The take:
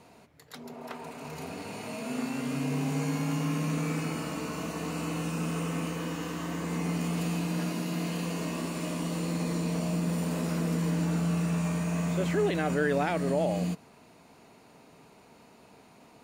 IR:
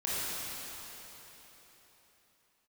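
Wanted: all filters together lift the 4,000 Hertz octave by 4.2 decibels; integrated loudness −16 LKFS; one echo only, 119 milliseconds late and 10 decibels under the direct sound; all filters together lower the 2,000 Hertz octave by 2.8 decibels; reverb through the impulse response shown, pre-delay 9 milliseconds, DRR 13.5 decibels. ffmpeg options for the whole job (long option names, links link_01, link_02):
-filter_complex "[0:a]equalizer=frequency=2000:width_type=o:gain=-6,equalizer=frequency=4000:width_type=o:gain=7.5,aecho=1:1:119:0.316,asplit=2[link_01][link_02];[1:a]atrim=start_sample=2205,adelay=9[link_03];[link_02][link_03]afir=irnorm=-1:irlink=0,volume=-21.5dB[link_04];[link_01][link_04]amix=inputs=2:normalize=0,volume=15dB"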